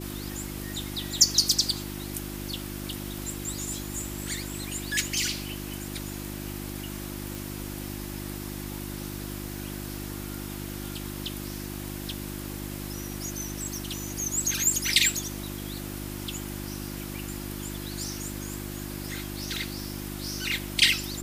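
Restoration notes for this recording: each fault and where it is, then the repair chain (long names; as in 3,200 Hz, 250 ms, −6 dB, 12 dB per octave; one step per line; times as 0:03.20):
mains hum 50 Hz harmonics 7 −37 dBFS
0:07.35: click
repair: click removal
hum removal 50 Hz, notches 7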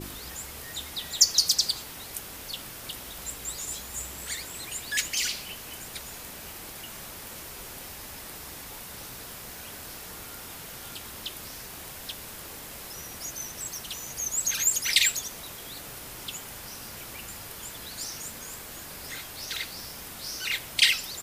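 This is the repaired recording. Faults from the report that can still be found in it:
none of them is left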